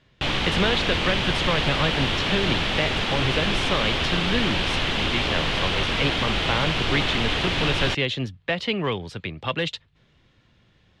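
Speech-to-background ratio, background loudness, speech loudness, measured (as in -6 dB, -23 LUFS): -4.0 dB, -23.5 LUFS, -27.5 LUFS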